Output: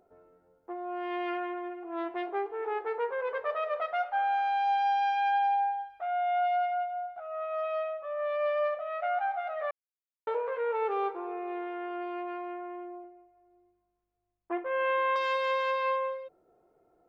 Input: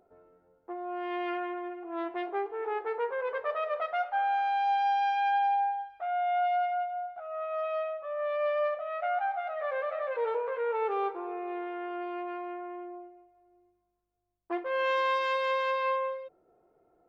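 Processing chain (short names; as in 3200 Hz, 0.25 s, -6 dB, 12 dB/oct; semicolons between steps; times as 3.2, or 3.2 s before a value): 9.71–10.27 mute; 13.04–15.16 LPF 2800 Hz 24 dB/oct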